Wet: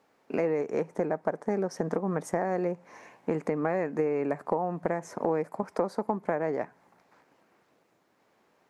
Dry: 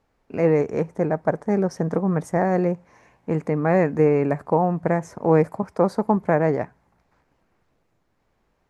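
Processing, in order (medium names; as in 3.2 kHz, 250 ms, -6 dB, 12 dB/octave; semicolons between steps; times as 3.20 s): high-pass 240 Hz 12 dB/octave; compression 6:1, threshold -30 dBFS, peak gain reduction 16 dB; trim +4.5 dB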